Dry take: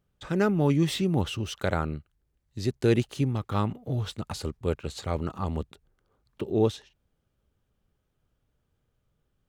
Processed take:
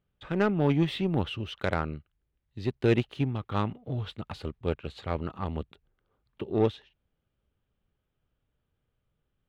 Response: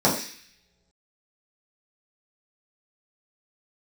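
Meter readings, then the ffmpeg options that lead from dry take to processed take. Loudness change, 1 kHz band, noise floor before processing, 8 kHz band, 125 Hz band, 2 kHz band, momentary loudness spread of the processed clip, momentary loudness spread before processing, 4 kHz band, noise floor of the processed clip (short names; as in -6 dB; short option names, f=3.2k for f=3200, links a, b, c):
-2.0 dB, -1.0 dB, -76 dBFS, under -15 dB, -2.5 dB, 0.0 dB, 13 LU, 11 LU, -3.0 dB, -80 dBFS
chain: -af "highshelf=f=4.6k:t=q:w=1.5:g=-12.5,aeval=exprs='0.335*(cos(1*acos(clip(val(0)/0.335,-1,1)))-cos(1*PI/2))+0.015*(cos(7*acos(clip(val(0)/0.335,-1,1)))-cos(7*PI/2))':c=same,volume=-1dB"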